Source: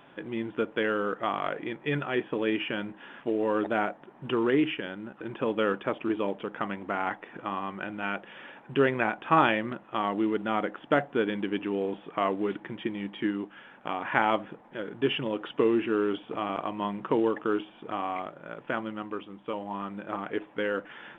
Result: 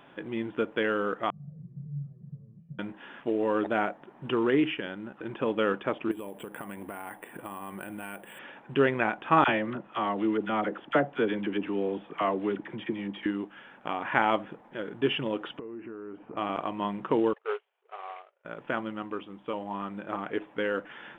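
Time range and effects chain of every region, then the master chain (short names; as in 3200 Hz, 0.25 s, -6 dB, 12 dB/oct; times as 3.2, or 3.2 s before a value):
1.3–2.79 infinite clipping + Butterworth band-pass 150 Hz, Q 3.3 + comb 1.7 ms, depth 93%
6.11–8.39 notch 1300 Hz, Q 11 + careless resampling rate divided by 4×, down filtered, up hold + compressor 12:1, threshold -34 dBFS
9.44–13.26 air absorption 62 m + dispersion lows, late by 42 ms, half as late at 890 Hz
15.59–16.37 compressor 8:1, threshold -37 dBFS + running mean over 13 samples
17.33–18.45 CVSD 16 kbps + brick-wall FIR high-pass 370 Hz + upward expander 2.5:1, over -45 dBFS
whole clip: dry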